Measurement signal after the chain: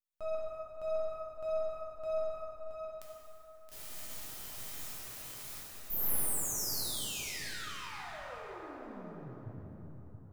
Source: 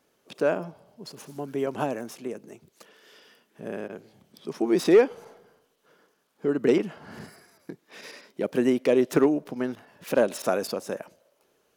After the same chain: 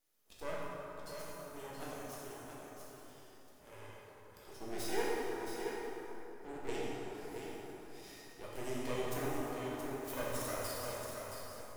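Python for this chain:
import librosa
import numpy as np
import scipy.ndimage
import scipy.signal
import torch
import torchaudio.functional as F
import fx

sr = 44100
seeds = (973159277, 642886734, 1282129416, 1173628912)

y = F.preemphasis(torch.from_numpy(x), 0.8).numpy()
y = fx.comb_fb(y, sr, f0_hz=620.0, decay_s=0.5, harmonics='all', damping=0.0, mix_pct=80)
y = np.maximum(y, 0.0)
y = y + 10.0 ** (-7.0 / 20.0) * np.pad(y, (int(673 * sr / 1000.0), 0))[:len(y)]
y = fx.rev_plate(y, sr, seeds[0], rt60_s=3.8, hf_ratio=0.5, predelay_ms=0, drr_db=-6.5)
y = y * librosa.db_to_amplitude(7.5)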